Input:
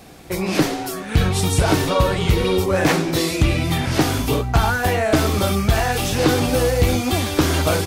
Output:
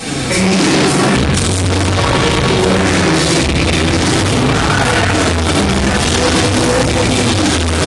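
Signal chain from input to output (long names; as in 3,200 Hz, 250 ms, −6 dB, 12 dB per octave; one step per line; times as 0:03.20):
parametric band 640 Hz −7 dB 1.4 octaves
single-tap delay 250 ms −21.5 dB
convolution reverb RT60 2.4 s, pre-delay 4 ms, DRR −9.5 dB
flanger 0.43 Hz, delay 6 ms, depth 9.6 ms, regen +38%
downward compressor 6 to 1, threshold −11 dBFS, peak gain reduction 9.5 dB
soft clipping −14 dBFS, distortion −13 dB
hum removal 295.4 Hz, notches 6
hard clipping −22.5 dBFS, distortion −10 dB
high-pass filter 130 Hz 6 dB per octave
high-shelf EQ 7,200 Hz +4.5 dB
boost into a limiter +26 dB
level −3 dB
AAC 64 kbit/s 22,050 Hz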